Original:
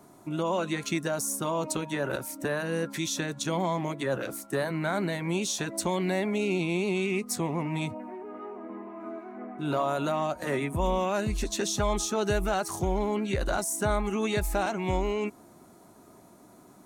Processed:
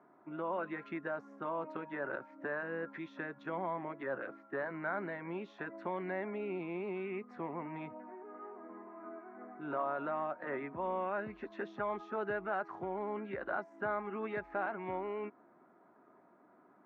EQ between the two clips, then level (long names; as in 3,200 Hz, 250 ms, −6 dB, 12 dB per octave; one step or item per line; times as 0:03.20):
high-pass filter 250 Hz 12 dB per octave
transistor ladder low-pass 2,000 Hz, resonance 40%
high-frequency loss of the air 53 metres
−1.0 dB